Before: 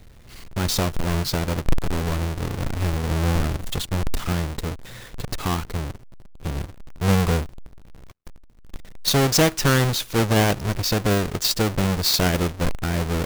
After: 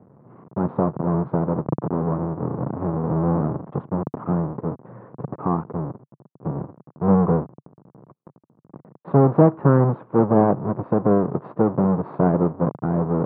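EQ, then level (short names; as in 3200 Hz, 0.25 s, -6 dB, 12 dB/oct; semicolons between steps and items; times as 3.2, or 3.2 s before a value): Chebyshev band-pass 140–1100 Hz, order 3; air absorption 500 m; +6.0 dB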